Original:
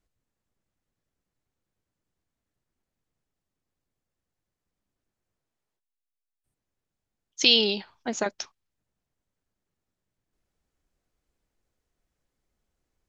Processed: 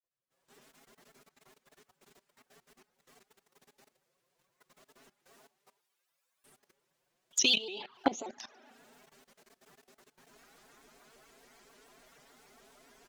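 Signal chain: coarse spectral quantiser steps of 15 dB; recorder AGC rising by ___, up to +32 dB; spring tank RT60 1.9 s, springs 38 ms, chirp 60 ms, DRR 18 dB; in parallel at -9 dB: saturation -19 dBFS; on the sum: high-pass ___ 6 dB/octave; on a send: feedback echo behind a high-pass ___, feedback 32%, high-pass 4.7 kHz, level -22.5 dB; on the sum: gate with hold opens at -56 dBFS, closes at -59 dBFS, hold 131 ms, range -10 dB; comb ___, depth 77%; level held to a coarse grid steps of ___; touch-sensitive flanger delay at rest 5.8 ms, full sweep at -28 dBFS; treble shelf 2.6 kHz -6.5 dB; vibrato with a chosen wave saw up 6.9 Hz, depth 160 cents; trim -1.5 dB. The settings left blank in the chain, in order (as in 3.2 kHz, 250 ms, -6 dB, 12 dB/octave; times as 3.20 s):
69 dB/s, 670 Hz, 72 ms, 7.5 ms, 18 dB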